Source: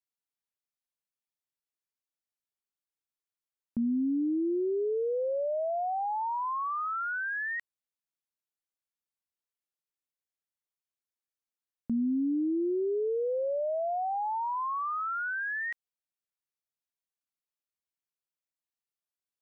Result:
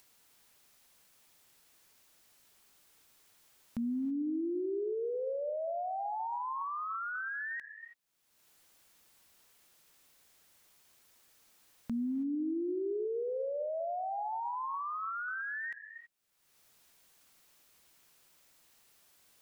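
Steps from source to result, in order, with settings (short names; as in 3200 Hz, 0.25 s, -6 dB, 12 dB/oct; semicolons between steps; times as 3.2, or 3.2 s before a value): upward compressor, threshold -35 dBFS; on a send: HPF 300 Hz + reverb, pre-delay 3 ms, DRR 10 dB; on the sum: gain -5.5 dB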